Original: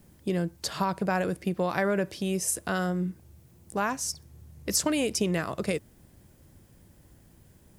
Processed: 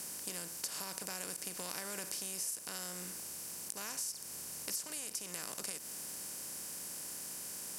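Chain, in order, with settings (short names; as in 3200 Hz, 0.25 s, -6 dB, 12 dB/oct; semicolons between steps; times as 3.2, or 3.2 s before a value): per-bin compression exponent 0.4; pre-emphasis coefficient 0.9; compressor 6:1, threshold -32 dBFS, peak gain reduction 11.5 dB; ending taper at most 360 dB/s; gain -4.5 dB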